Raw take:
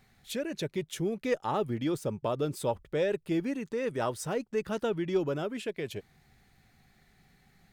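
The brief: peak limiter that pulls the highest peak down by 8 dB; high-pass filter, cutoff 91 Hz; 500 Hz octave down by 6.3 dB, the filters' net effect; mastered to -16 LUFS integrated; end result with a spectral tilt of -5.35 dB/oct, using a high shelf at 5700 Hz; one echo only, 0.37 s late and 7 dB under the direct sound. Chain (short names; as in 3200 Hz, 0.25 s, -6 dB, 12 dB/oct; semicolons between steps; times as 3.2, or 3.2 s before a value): HPF 91 Hz; bell 500 Hz -8 dB; high shelf 5700 Hz -4 dB; limiter -27 dBFS; echo 0.37 s -7 dB; gain +21 dB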